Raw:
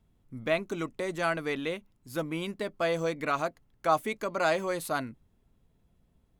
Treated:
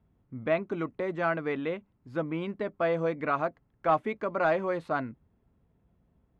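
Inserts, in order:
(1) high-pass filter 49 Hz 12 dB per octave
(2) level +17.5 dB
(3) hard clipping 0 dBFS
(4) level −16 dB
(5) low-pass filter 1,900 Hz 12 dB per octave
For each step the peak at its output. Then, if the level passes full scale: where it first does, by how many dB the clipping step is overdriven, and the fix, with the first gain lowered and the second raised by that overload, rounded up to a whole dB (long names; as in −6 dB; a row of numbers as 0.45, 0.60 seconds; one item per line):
−12.5, +5.0, 0.0, −16.0, −15.5 dBFS
step 2, 5.0 dB
step 2 +12.5 dB, step 4 −11 dB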